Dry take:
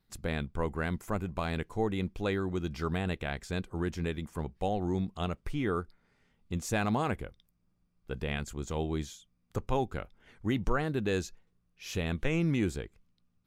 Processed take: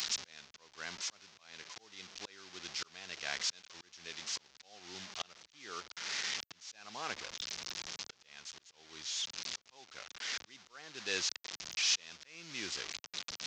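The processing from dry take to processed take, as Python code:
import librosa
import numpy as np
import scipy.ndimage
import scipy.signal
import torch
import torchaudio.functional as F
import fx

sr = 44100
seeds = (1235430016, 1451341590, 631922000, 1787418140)

y = fx.delta_mod(x, sr, bps=32000, step_db=-34.0)
y = fx.auto_swell(y, sr, attack_ms=740.0)
y = np.diff(y, prepend=0.0)
y = fx.band_widen(y, sr, depth_pct=40)
y = y * librosa.db_to_amplitude(14.0)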